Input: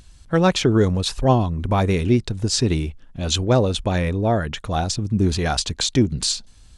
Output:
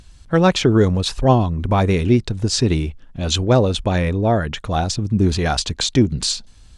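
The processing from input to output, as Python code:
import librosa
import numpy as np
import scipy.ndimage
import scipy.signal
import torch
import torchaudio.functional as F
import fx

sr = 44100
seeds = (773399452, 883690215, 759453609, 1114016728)

y = fx.high_shelf(x, sr, hz=9000.0, db=-7.0)
y = y * librosa.db_to_amplitude(2.5)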